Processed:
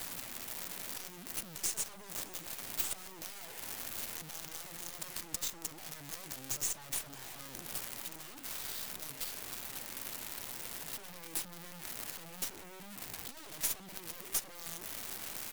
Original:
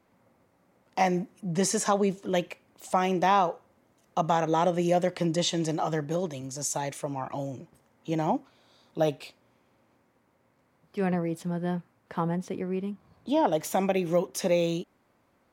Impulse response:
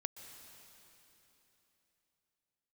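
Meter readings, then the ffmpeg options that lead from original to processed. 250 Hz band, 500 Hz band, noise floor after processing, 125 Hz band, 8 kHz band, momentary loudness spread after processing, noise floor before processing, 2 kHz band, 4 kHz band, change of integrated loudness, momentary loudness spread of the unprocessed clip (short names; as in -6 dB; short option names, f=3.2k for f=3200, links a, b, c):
-23.5 dB, -25.5 dB, -50 dBFS, -22.0 dB, -1.5 dB, 9 LU, -68 dBFS, -8.5 dB, -5.0 dB, -11.0 dB, 13 LU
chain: -filter_complex "[0:a]aeval=exprs='val(0)+0.5*0.0141*sgn(val(0))':c=same,acrossover=split=710|1800[a][b][c];[a]highpass=54[d];[c]crystalizer=i=1:c=0[e];[d][b][e]amix=inputs=3:normalize=0,acrossover=split=360|1700|6200[f][g][h][i];[f]acompressor=threshold=-38dB:ratio=4[j];[g]acompressor=threshold=-35dB:ratio=4[k];[h]acompressor=threshold=-45dB:ratio=4[l];[i]acompressor=threshold=-40dB:ratio=4[m];[j][k][l][m]amix=inputs=4:normalize=0,asoftclip=type=tanh:threshold=-34dB,aemphasis=mode=production:type=cd,aeval=exprs='0.0631*(cos(1*acos(clip(val(0)/0.0631,-1,1)))-cos(1*PI/2))+0.00631*(cos(2*acos(clip(val(0)/0.0631,-1,1)))-cos(2*PI/2))+0.0224*(cos(3*acos(clip(val(0)/0.0631,-1,1)))-cos(3*PI/2))+0.00158*(cos(7*acos(clip(val(0)/0.0631,-1,1)))-cos(7*PI/2))':c=same,aecho=1:1:616:0.0631,volume=6.5dB"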